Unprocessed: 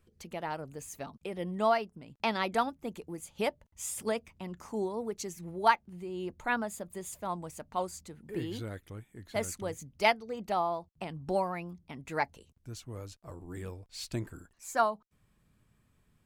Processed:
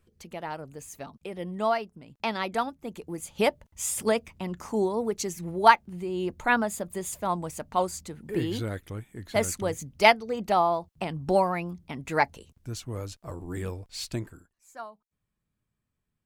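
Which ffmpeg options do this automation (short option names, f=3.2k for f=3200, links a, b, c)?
-af "volume=7.5dB,afade=t=in:st=2.87:d=0.46:silence=0.473151,afade=t=out:st=13.86:d=0.49:silence=0.334965,afade=t=out:st=14.35:d=0.16:silence=0.266073"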